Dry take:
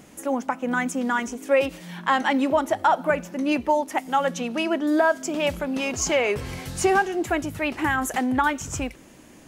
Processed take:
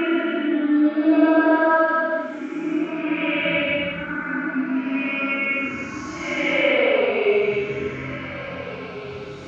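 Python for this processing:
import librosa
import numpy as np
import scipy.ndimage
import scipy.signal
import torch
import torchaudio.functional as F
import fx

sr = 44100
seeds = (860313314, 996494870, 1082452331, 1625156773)

p1 = fx.peak_eq(x, sr, hz=330.0, db=3.5, octaves=1.0)
p2 = fx.quant_dither(p1, sr, seeds[0], bits=6, dither='none')
p3 = p1 + (p2 * 10.0 ** (-9.0 / 20.0))
p4 = fx.cabinet(p3, sr, low_hz=150.0, low_slope=12, high_hz=3600.0, hz=(760.0, 1400.0, 2200.0), db=(-6, 10, 8))
p5 = fx.env_phaser(p4, sr, low_hz=210.0, high_hz=2400.0, full_db=-11.0)
p6 = p5 + fx.echo_feedback(p5, sr, ms=358, feedback_pct=56, wet_db=-15.5, dry=0)
y = fx.paulstretch(p6, sr, seeds[1], factor=4.6, window_s=0.25, from_s=4.69)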